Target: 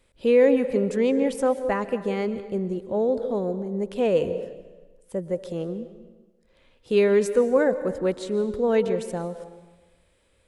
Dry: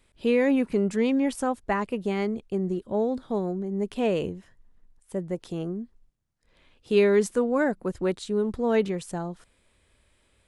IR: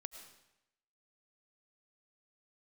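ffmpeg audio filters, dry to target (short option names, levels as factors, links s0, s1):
-filter_complex "[0:a]asplit=2[s0][s1];[s1]equalizer=f=520:t=o:w=0.39:g=14.5[s2];[1:a]atrim=start_sample=2205,asetrate=31752,aresample=44100[s3];[s2][s3]afir=irnorm=-1:irlink=0,volume=1.12[s4];[s0][s4]amix=inputs=2:normalize=0,volume=0.531"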